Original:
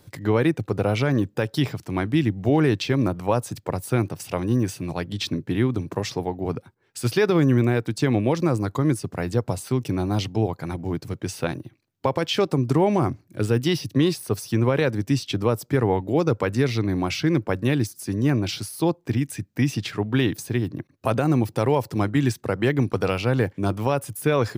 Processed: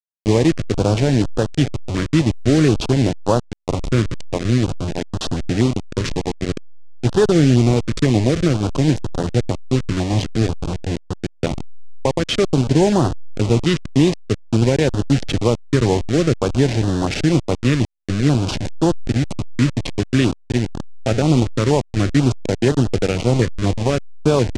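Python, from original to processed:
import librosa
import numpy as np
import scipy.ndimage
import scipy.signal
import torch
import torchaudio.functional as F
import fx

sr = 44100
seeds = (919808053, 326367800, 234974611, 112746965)

y = fx.delta_hold(x, sr, step_db=-21.5)
y = scipy.signal.sosfilt(scipy.signal.butter(4, 7800.0, 'lowpass', fs=sr, output='sos'), y)
y = fx.filter_held_notch(y, sr, hz=4.1, low_hz=770.0, high_hz=2200.0)
y = F.gain(torch.from_numpy(y), 6.0).numpy()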